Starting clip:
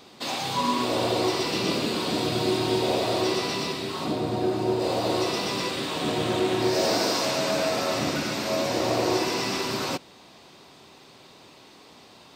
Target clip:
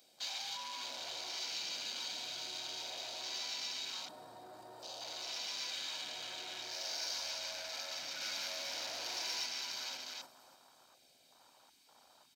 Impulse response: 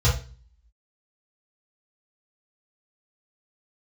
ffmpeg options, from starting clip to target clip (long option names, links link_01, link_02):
-filter_complex "[0:a]aecho=1:1:1.3:0.55,aecho=1:1:292|584|876|1168:0.211|0.0803|0.0305|0.0116,asettb=1/sr,asplit=3[link_01][link_02][link_03];[link_01]atrim=end=8.214[link_04];[link_02]atrim=start=8.21:end=9.46,asetpts=PTS-STARTPTS,afade=type=in:duration=0.004:curve=qsin,afade=type=out:start_time=1.246:duration=0.004:curve=qsin,acontrast=57[link_05];[link_03]atrim=start=9.456[link_06];[link_04][link_05]acrossfade=duration=0.004:curve1=hsin:curve2=qsin[link_07];[link_07][link_06]acrossfade=duration=0.004:curve1=qsin:curve2=hsin,asplit=2[link_08][link_09];[1:a]atrim=start_sample=2205,asetrate=22491,aresample=44100[link_10];[link_09][link_10]afir=irnorm=-1:irlink=0,volume=-30.5dB[link_11];[link_08][link_11]amix=inputs=2:normalize=0,asoftclip=type=tanh:threshold=-19.5dB,alimiter=level_in=6.5dB:limit=-24dB:level=0:latency=1:release=17,volume=-6.5dB,afwtdn=0.00562,aderivative,asettb=1/sr,asplit=3[link_12][link_13][link_14];[link_12]atrim=end=7.054[link_15];[link_13]atrim=start=7.05:end=7.69,asetpts=PTS-STARTPTS,afade=type=in:duration=0.004:curve=qsin,afade=type=out:start_time=0.636:duration=0.004:curve=qsin,aeval=exprs='val(0)+0.0001*(sin(2*PI*60*n/s)+sin(2*PI*2*60*n/s)/2+sin(2*PI*3*60*n/s)/3+sin(2*PI*4*60*n/s)/4+sin(2*PI*5*60*n/s)/5)':channel_layout=same[link_16];[link_14]atrim=start=7.686[link_17];[link_15][link_16]acrossfade=duration=0.004:curve1=hsin:curve2=qsin[link_18];[link_18][link_17]acrossfade=duration=0.004:curve1=qsin:curve2=hsin,volume=6dB"